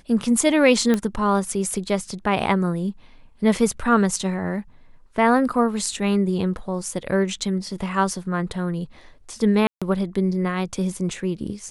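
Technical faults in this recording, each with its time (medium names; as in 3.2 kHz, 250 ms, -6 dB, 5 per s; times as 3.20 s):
0.94 s: pop -9 dBFS
9.67–9.82 s: dropout 146 ms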